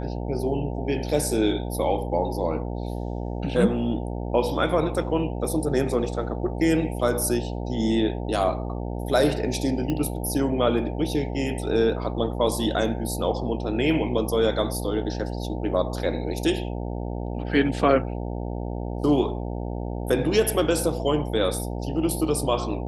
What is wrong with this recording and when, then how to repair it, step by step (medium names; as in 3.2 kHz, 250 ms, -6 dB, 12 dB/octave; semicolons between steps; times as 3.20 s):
buzz 60 Hz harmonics 15 -30 dBFS
9.90 s: pop -15 dBFS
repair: de-click; de-hum 60 Hz, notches 15